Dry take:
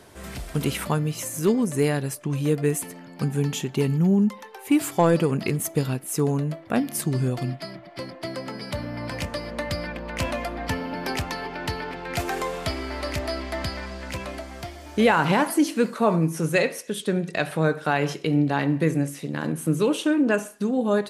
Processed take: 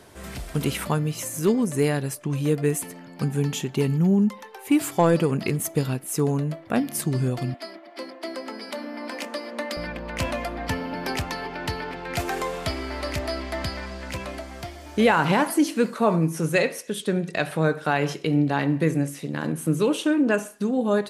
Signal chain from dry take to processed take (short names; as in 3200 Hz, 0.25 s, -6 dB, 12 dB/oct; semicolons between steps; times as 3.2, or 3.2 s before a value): 7.54–9.77 Chebyshev high-pass 220 Hz, order 6